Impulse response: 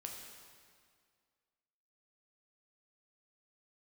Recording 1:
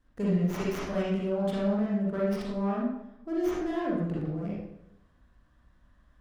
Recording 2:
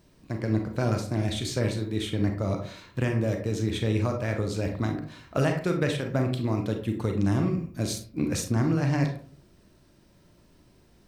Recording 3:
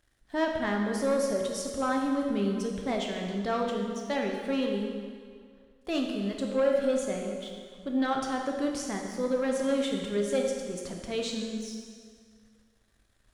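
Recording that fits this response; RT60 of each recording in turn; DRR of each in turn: 3; 0.80 s, 0.50 s, 2.0 s; -7.0 dB, 3.0 dB, 0.5 dB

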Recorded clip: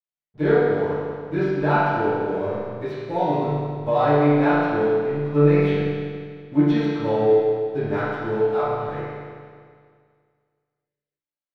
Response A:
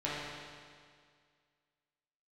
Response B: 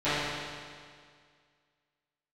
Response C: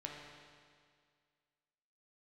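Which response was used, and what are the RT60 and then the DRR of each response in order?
B; 2.0 s, 2.0 s, 2.0 s; -9.0 dB, -18.5 dB, -1.5 dB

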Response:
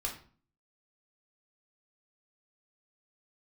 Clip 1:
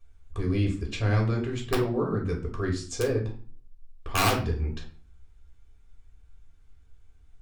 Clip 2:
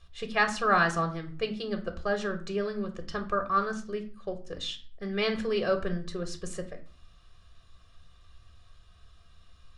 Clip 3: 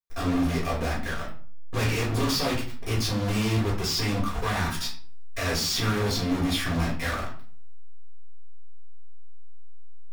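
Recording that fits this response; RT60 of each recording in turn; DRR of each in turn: 1; 0.45 s, 0.45 s, 0.45 s; -1.0 dB, 5.5 dB, -6.0 dB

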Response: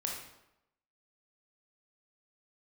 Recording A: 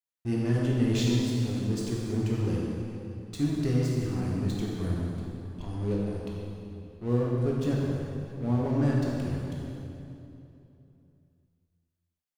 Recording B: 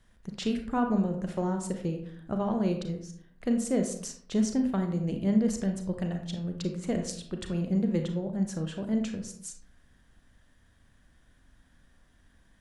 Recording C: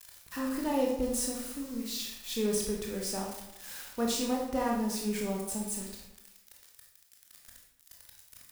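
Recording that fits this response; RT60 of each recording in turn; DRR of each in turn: C; 2.9 s, 0.65 s, 0.85 s; -4.0 dB, 4.5 dB, -1.5 dB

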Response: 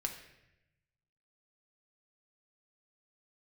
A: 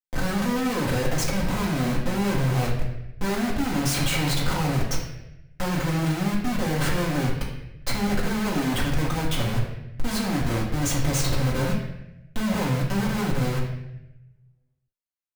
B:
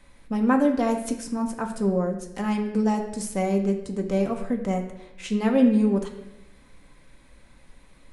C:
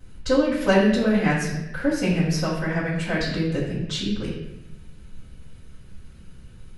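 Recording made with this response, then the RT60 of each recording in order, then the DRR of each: B; 0.90 s, 0.90 s, 0.90 s; -6.0 dB, 2.5 dB, -13.5 dB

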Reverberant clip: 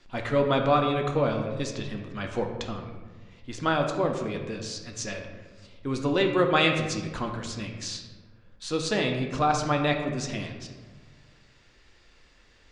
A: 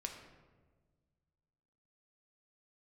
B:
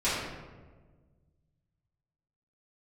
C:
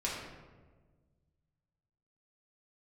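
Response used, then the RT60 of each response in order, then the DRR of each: A; 1.5 s, 1.4 s, 1.4 s; 2.5 dB, -13.0 dB, -5.5 dB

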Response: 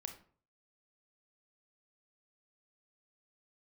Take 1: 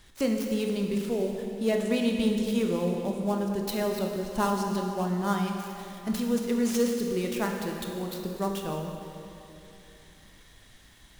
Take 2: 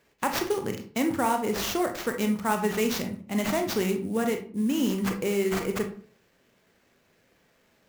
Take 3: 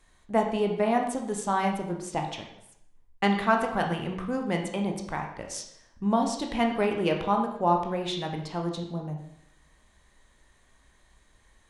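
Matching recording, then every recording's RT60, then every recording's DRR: 2; 3.0 s, 0.50 s, 0.75 s; 1.5 dB, 5.0 dB, 2.0 dB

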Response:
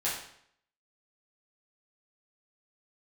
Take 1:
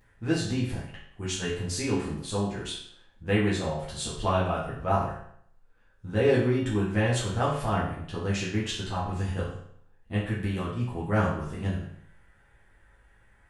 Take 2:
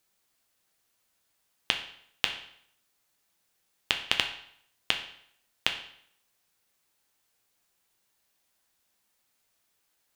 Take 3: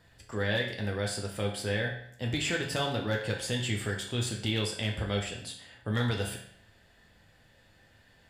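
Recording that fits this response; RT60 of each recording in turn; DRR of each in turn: 1; 0.65 s, 0.65 s, 0.65 s; -9.0 dB, 3.5 dB, -0.5 dB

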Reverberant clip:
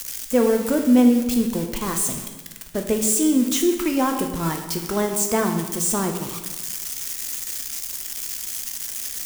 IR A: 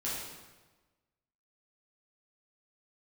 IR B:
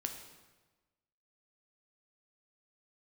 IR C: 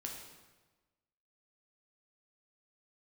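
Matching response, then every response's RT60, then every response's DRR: B; 1.2 s, 1.2 s, 1.2 s; -8.5 dB, 4.0 dB, -0.5 dB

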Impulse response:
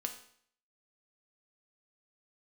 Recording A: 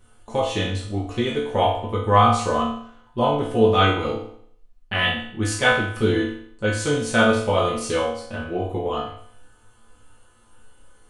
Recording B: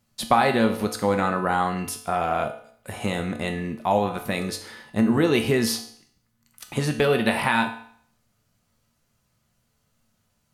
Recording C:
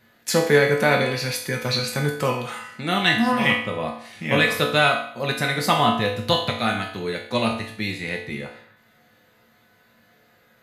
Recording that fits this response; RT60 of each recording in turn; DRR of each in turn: B; 0.60 s, 0.60 s, 0.60 s; -7.0 dB, 4.0 dB, -1.5 dB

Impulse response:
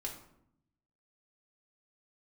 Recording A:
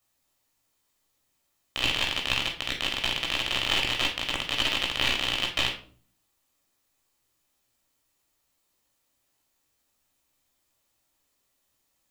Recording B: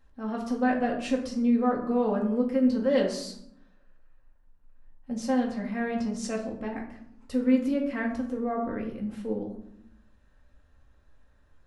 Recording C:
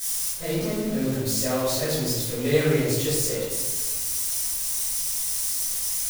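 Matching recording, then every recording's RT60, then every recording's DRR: B; 0.50 s, 0.75 s, 1.2 s; -2.0 dB, -1.0 dB, -12.0 dB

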